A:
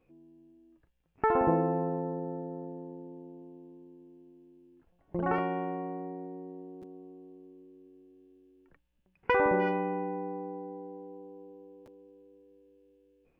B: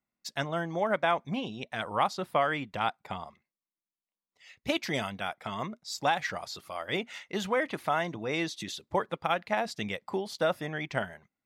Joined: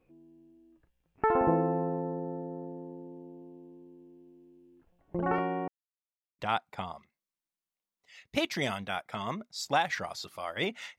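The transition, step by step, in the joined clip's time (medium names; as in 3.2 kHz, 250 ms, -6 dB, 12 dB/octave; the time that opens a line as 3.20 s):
A
5.68–6.39 s: mute
6.39 s: go over to B from 2.71 s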